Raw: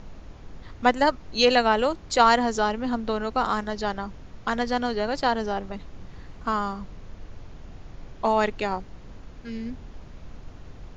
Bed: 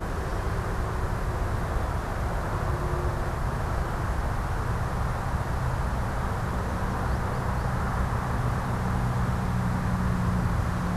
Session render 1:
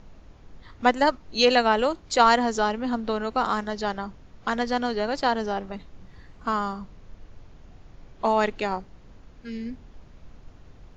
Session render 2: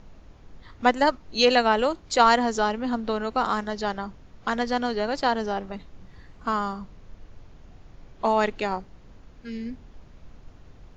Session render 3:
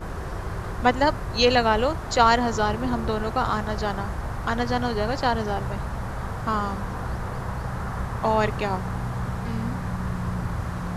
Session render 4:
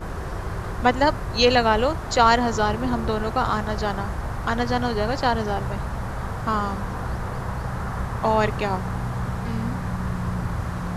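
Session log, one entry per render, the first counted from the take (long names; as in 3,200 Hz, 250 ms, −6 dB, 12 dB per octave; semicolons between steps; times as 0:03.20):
noise reduction from a noise print 6 dB
0:03.44–0:05.25: floating-point word with a short mantissa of 8 bits
mix in bed −2.5 dB
level +1.5 dB; brickwall limiter −3 dBFS, peak gain reduction 1.5 dB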